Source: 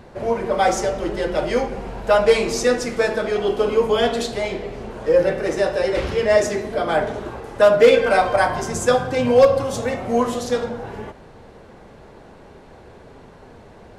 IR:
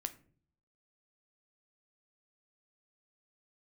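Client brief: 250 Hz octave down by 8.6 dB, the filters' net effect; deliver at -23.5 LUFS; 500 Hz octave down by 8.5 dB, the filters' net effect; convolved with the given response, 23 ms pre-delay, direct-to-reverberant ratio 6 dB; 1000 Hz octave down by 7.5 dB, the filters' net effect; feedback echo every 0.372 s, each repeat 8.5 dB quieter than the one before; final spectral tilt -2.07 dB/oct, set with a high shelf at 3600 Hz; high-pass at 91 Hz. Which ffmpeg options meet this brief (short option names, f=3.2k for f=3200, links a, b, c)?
-filter_complex "[0:a]highpass=91,equalizer=f=250:t=o:g=-8.5,equalizer=f=500:t=o:g=-6,equalizer=f=1k:t=o:g=-8,highshelf=f=3.6k:g=8,aecho=1:1:372|744|1116|1488:0.376|0.143|0.0543|0.0206,asplit=2[a][b];[1:a]atrim=start_sample=2205,adelay=23[c];[b][c]afir=irnorm=-1:irlink=0,volume=-4.5dB[d];[a][d]amix=inputs=2:normalize=0"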